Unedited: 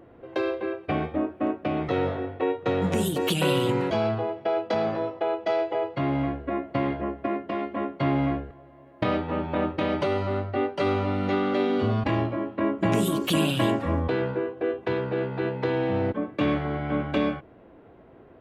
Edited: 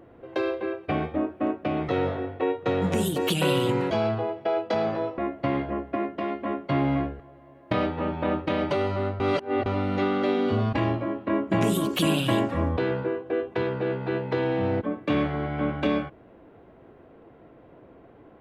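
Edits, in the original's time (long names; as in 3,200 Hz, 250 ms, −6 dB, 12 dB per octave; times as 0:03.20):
0:05.18–0:06.49: remove
0:10.51–0:10.97: reverse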